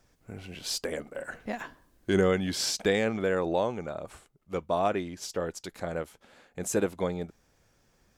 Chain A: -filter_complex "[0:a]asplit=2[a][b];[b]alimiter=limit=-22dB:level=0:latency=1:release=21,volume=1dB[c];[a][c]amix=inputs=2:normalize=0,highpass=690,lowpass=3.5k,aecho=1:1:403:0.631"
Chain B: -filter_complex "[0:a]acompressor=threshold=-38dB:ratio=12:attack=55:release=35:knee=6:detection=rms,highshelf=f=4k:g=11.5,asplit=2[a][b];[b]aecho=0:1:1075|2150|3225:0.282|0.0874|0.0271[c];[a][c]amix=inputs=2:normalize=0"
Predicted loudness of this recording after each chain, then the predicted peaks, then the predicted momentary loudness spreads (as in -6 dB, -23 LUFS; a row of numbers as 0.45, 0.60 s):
-31.0, -35.0 LUFS; -13.0, -14.0 dBFS; 12, 12 LU